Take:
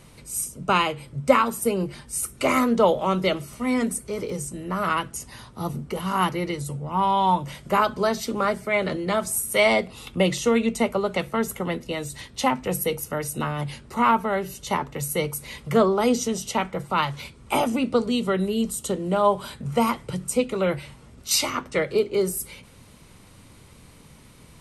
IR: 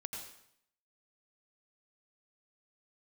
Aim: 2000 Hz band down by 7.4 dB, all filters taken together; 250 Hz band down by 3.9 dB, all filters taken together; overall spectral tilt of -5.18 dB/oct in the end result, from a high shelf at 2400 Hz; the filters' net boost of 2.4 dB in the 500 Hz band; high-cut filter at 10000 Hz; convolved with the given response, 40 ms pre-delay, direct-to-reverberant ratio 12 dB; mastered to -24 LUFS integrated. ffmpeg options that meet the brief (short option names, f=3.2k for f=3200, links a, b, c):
-filter_complex "[0:a]lowpass=10k,equalizer=f=250:t=o:g=-6,equalizer=f=500:t=o:g=5,equalizer=f=2k:t=o:g=-6.5,highshelf=f=2.4k:g=-5.5,asplit=2[a][b];[1:a]atrim=start_sample=2205,adelay=40[c];[b][c]afir=irnorm=-1:irlink=0,volume=-10.5dB[d];[a][d]amix=inputs=2:normalize=0,volume=0.5dB"